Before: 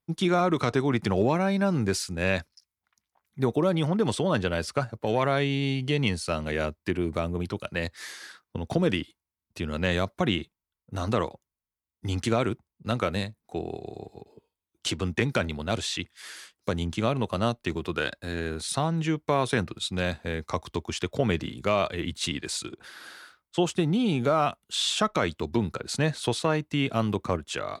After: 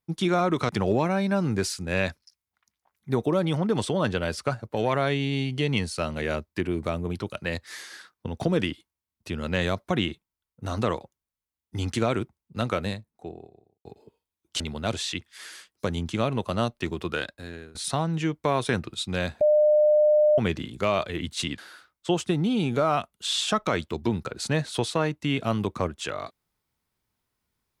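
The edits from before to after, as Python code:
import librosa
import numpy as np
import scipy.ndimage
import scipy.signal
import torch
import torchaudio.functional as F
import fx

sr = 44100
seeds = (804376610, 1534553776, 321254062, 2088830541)

y = fx.studio_fade_out(x, sr, start_s=13.0, length_s=1.15)
y = fx.edit(y, sr, fx.cut(start_s=0.69, length_s=0.3),
    fx.cut(start_s=14.9, length_s=0.54),
    fx.fade_out_to(start_s=17.94, length_s=0.65, floor_db=-20.5),
    fx.bleep(start_s=20.25, length_s=0.97, hz=603.0, db=-15.5),
    fx.cut(start_s=22.42, length_s=0.65), tone=tone)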